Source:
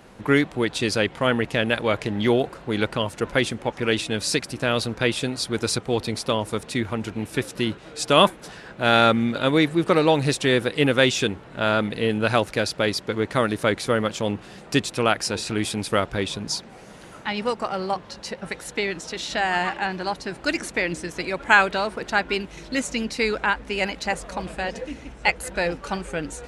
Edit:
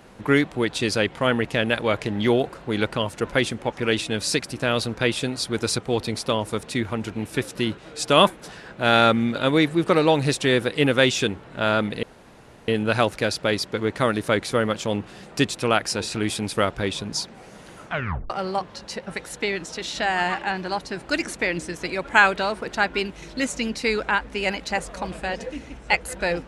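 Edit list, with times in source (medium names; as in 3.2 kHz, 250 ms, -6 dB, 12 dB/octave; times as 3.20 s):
12.03 s: insert room tone 0.65 s
17.20 s: tape stop 0.45 s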